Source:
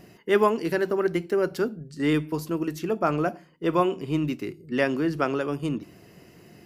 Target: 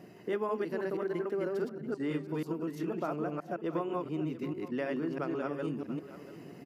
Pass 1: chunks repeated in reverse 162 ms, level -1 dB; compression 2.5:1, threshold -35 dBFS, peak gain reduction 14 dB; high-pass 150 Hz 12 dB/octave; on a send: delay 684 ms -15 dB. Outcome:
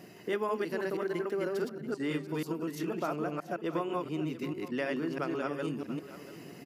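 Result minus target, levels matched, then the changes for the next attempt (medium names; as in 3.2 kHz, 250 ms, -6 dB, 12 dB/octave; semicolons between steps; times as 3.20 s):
4 kHz band +6.0 dB
add after high-pass: treble shelf 2 kHz -9.5 dB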